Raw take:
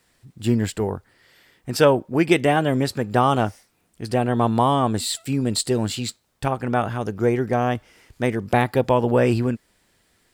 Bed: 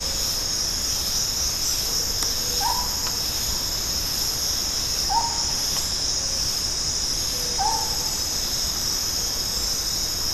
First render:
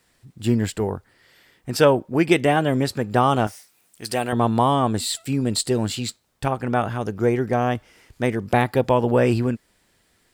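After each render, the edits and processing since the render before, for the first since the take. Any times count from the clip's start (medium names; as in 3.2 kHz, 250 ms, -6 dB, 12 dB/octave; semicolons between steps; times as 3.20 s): 3.47–4.33 s: tilt EQ +3 dB/octave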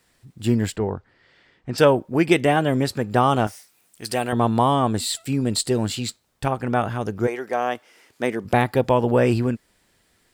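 0.76–1.78 s: distance through air 140 m; 7.26–8.44 s: high-pass 600 Hz -> 210 Hz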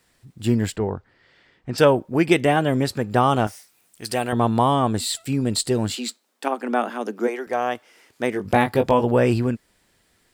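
5.95–7.47 s: steep high-pass 210 Hz 72 dB/octave; 8.33–9.03 s: doubling 20 ms -6 dB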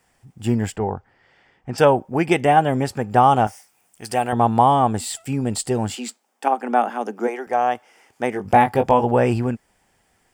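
graphic EQ with 31 bands 315 Hz -3 dB, 800 Hz +10 dB, 4 kHz -11 dB, 12.5 kHz -6 dB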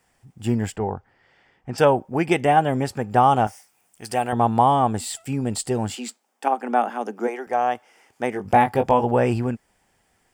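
trim -2 dB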